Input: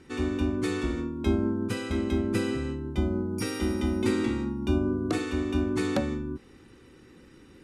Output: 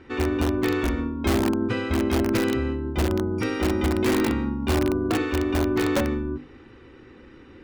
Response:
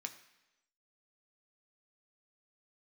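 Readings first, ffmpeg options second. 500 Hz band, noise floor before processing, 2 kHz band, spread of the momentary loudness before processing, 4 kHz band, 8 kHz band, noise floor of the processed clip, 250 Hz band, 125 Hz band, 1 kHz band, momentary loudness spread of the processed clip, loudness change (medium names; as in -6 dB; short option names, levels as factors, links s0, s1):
+5.5 dB, -54 dBFS, +7.0 dB, 5 LU, +5.5 dB, +5.5 dB, -48 dBFS, +4.0 dB, +4.0 dB, +8.5 dB, 4 LU, +4.5 dB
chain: -filter_complex "[0:a]lowpass=2900,equalizer=f=170:t=o:w=0.45:g=-9.5,bandreject=f=50:t=h:w=6,bandreject=f=100:t=h:w=6,bandreject=f=150:t=h:w=6,bandreject=f=200:t=h:w=6,bandreject=f=250:t=h:w=6,bandreject=f=300:t=h:w=6,bandreject=f=350:t=h:w=6,bandreject=f=400:t=h:w=6,bandreject=f=450:t=h:w=6,aeval=exprs='0.2*(cos(1*acos(clip(val(0)/0.2,-1,1)))-cos(1*PI/2))+0.00224*(cos(8*acos(clip(val(0)/0.2,-1,1)))-cos(8*PI/2))':c=same,asplit=2[s0][s1];[s1]aeval=exprs='(mod(11.9*val(0)+1,2)-1)/11.9':c=same,volume=0.708[s2];[s0][s2]amix=inputs=2:normalize=0,volume=1.33"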